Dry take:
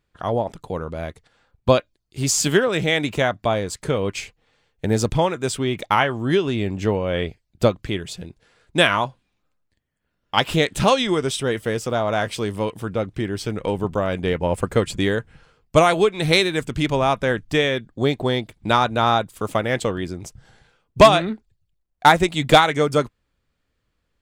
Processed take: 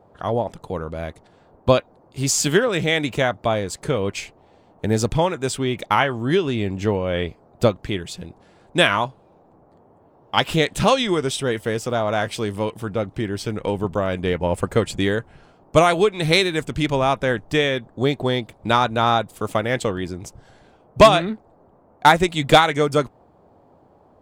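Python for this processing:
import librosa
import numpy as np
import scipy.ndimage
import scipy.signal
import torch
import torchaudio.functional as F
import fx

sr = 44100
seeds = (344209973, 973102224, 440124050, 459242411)

y = fx.dmg_noise_band(x, sr, seeds[0], low_hz=70.0, high_hz=850.0, level_db=-54.0)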